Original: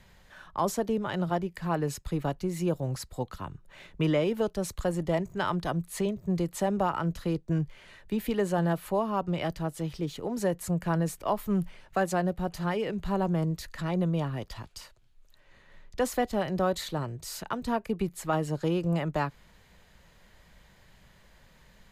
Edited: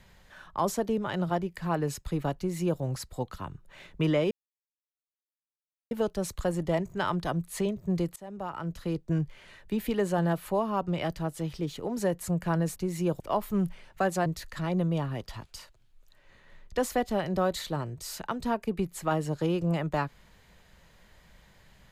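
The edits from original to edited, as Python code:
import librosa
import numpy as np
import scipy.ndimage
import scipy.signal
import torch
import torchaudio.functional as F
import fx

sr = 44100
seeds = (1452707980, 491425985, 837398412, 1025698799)

y = fx.edit(x, sr, fx.duplicate(start_s=2.37, length_s=0.44, to_s=11.16),
    fx.insert_silence(at_s=4.31, length_s=1.6),
    fx.fade_in_from(start_s=6.56, length_s=0.94, floor_db=-23.5),
    fx.cut(start_s=12.22, length_s=1.26), tone=tone)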